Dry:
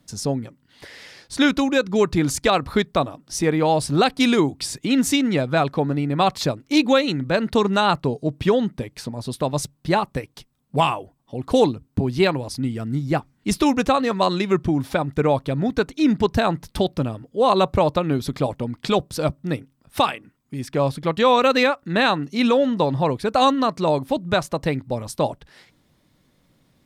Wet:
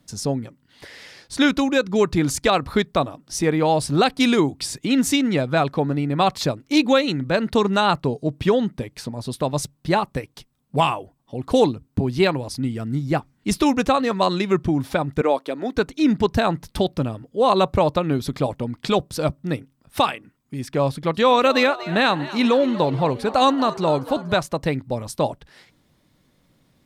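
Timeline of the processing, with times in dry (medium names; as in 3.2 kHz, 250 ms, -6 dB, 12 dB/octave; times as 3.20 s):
15.21–15.76 s: high-pass 280 Hz 24 dB/octave
20.90–24.37 s: frequency-shifting echo 239 ms, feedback 59%, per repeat +110 Hz, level -16.5 dB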